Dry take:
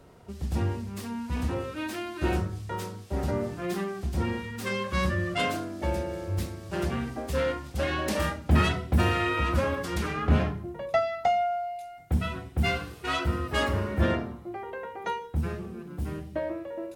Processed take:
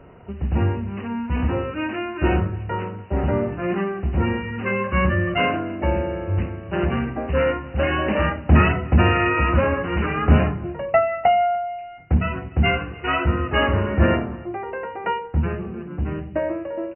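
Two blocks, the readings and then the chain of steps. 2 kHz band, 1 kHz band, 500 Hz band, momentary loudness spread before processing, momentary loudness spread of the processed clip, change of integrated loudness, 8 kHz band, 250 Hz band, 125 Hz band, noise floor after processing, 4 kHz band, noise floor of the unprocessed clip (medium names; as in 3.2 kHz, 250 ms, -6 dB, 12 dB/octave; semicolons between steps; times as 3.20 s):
+7.5 dB, +7.5 dB, +7.5 dB, 10 LU, 10 LU, +7.5 dB, under -35 dB, +7.5 dB, +7.5 dB, -37 dBFS, +3.0 dB, -45 dBFS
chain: brick-wall FIR low-pass 3 kHz; on a send: delay 295 ms -23 dB; on the sum: trim +7.5 dB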